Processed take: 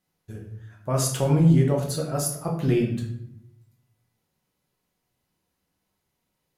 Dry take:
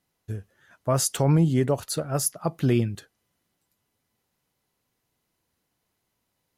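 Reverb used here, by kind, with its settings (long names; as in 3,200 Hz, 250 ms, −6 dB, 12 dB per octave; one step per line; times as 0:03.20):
rectangular room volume 160 cubic metres, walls mixed, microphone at 1 metre
level −4 dB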